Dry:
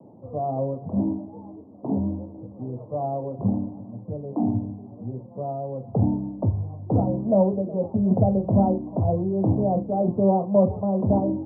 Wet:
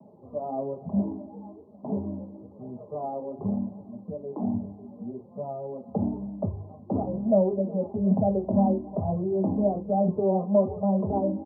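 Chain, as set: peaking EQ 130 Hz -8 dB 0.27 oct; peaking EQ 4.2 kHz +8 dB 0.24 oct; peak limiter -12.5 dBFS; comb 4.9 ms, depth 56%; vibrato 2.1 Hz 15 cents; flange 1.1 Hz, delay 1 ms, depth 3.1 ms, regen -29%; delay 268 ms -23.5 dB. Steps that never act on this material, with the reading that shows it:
peaking EQ 4.2 kHz: input has nothing above 960 Hz

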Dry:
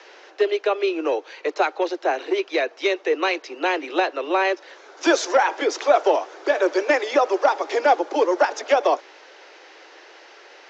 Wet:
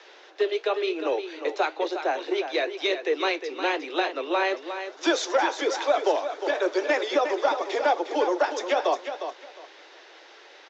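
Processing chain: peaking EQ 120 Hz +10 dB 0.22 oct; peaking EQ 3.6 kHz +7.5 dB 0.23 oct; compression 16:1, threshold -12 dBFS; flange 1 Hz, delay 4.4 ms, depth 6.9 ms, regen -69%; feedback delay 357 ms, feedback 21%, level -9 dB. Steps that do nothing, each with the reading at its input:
peaking EQ 120 Hz: input has nothing below 240 Hz

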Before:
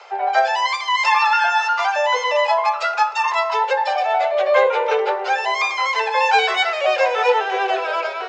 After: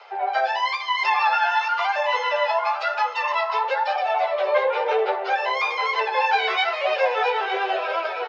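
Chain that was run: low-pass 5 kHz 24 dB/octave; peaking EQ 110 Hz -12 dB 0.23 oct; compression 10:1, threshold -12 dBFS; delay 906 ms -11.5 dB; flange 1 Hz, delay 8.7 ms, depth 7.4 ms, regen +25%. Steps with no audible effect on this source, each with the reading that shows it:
peaking EQ 110 Hz: input has nothing below 360 Hz

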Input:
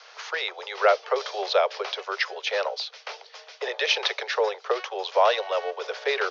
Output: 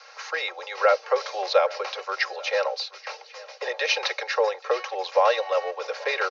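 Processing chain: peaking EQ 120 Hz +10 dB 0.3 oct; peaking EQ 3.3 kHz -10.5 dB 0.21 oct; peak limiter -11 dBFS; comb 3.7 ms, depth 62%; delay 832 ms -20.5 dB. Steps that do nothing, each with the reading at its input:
peaking EQ 120 Hz: input has nothing below 340 Hz

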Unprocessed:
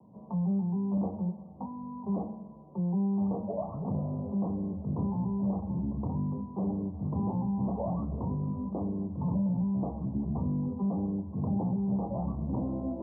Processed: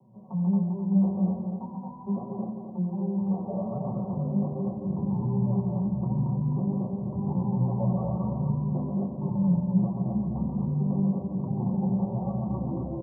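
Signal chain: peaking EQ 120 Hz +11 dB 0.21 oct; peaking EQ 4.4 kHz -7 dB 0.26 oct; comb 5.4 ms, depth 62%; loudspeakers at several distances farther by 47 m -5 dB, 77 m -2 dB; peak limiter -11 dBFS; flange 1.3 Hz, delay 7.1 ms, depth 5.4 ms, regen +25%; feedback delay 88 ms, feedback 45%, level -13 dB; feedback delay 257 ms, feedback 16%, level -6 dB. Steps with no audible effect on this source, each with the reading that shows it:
peaking EQ 4.4 kHz: input has nothing above 1 kHz; peak limiter -11 dBFS: peak at its input -12.0 dBFS

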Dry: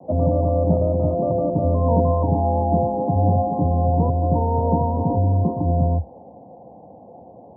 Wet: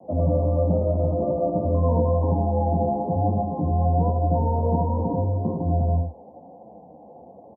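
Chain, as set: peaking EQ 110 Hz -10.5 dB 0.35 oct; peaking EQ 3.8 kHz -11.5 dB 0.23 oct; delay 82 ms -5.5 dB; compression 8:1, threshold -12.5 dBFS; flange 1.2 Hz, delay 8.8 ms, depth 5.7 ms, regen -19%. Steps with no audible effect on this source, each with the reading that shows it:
peaking EQ 3.8 kHz: input has nothing above 960 Hz

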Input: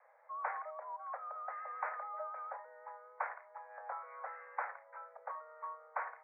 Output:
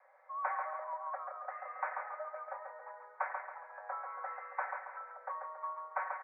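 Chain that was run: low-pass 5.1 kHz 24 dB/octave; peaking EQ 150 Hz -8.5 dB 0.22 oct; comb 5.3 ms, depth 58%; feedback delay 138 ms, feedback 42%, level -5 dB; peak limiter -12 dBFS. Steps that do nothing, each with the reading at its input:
low-pass 5.1 kHz: input has nothing above 2.4 kHz; peaking EQ 150 Hz: input has nothing below 400 Hz; peak limiter -12 dBFS: peak at its input -21.5 dBFS

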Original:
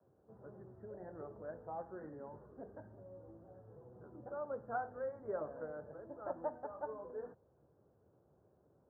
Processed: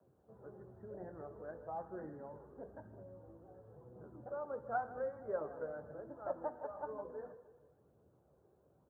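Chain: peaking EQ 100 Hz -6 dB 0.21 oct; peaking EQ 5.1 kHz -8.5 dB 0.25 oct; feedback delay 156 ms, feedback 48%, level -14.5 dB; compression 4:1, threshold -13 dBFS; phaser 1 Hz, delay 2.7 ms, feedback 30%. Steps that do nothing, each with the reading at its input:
peaking EQ 5.1 kHz: input has nothing above 1.6 kHz; compression, threshold -13 dBFS: peak at its input -26.5 dBFS

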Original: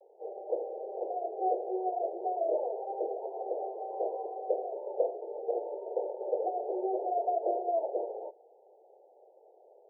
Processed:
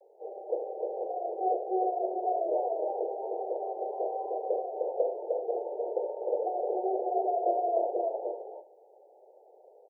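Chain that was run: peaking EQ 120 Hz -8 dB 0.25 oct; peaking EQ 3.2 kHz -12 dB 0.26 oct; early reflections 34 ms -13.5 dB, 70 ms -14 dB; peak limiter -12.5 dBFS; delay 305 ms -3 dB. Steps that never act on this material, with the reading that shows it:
peaking EQ 120 Hz: input has nothing below 300 Hz; peaking EQ 3.2 kHz: input has nothing above 960 Hz; peak limiter -12.5 dBFS: peak at its input -16.5 dBFS

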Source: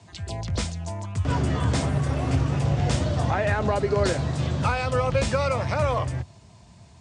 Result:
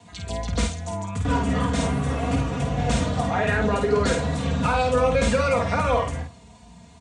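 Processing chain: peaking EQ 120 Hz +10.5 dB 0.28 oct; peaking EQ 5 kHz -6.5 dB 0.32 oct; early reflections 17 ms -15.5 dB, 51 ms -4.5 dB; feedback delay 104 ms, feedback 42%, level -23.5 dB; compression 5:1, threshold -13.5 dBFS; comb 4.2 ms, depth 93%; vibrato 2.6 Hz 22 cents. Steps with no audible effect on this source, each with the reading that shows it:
none, every step acts

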